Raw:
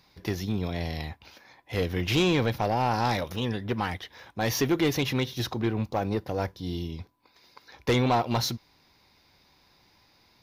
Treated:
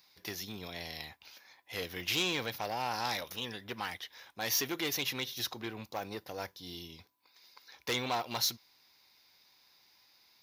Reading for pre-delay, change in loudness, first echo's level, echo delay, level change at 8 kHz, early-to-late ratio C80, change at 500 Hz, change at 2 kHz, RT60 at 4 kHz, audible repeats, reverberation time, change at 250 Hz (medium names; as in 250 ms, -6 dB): no reverb, -7.5 dB, no echo, no echo, +0.5 dB, no reverb, -12.0 dB, -4.5 dB, no reverb, no echo, no reverb, -14.5 dB